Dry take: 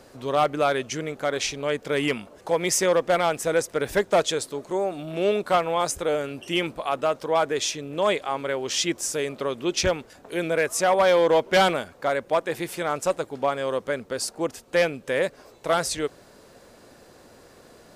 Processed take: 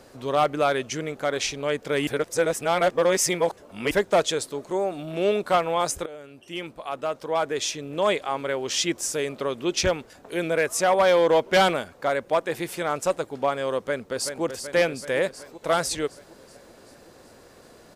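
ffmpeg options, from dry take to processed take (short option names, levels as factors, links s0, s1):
-filter_complex "[0:a]asplit=2[s0][s1];[s1]afade=t=in:st=13.78:d=0.01,afade=t=out:st=14.43:d=0.01,aecho=0:1:380|760|1140|1520|1900|2280|2660|3040|3420:0.421697|0.274103|0.178167|0.115808|0.0752755|0.048929|0.0318039|0.0206725|0.0134371[s2];[s0][s2]amix=inputs=2:normalize=0,asplit=4[s3][s4][s5][s6];[s3]atrim=end=2.072[s7];[s4]atrim=start=2.068:end=3.912,asetpts=PTS-STARTPTS,areverse[s8];[s5]atrim=start=3.908:end=6.06,asetpts=PTS-STARTPTS,afade=t=out:st=2.148:d=0.004:c=hsin:silence=0.125893[s9];[s6]atrim=start=6.06,asetpts=PTS-STARTPTS,afade=t=in:d=1.88:silence=0.125893[s10];[s7][s8]acrossfade=d=0.004:c1=hsin:c2=hsin[s11];[s9][s10]concat=n=2:v=0:a=1[s12];[s11][s12]acrossfade=d=0.004:c1=hsin:c2=hsin"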